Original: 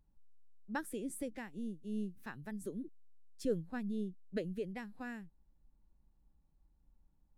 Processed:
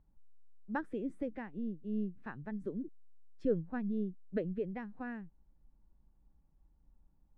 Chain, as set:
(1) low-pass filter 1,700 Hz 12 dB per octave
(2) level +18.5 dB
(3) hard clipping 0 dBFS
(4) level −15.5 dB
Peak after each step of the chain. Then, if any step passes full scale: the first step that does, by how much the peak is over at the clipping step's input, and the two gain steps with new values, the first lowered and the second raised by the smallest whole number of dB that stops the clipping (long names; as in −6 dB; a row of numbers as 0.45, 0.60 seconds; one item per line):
−23.5, −5.0, −5.0, −20.5 dBFS
no step passes full scale